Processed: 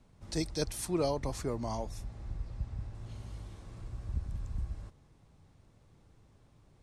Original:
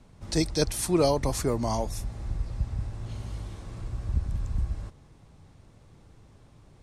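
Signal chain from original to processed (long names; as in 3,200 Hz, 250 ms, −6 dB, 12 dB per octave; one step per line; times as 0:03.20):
0:00.85–0:02.95: high-shelf EQ 10,000 Hz −11.5 dB
level −8 dB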